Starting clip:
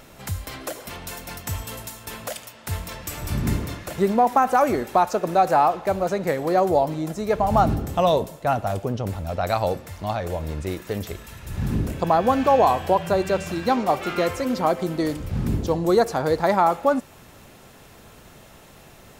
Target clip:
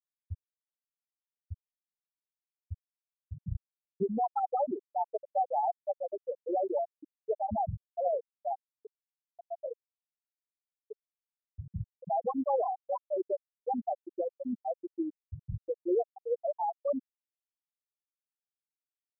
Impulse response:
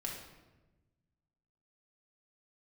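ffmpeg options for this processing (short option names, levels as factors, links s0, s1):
-af "alimiter=limit=0.251:level=0:latency=1:release=12,afftfilt=real='re*gte(hypot(re,im),0.708)':imag='im*gte(hypot(re,im),0.708)':win_size=1024:overlap=0.75,volume=0.447"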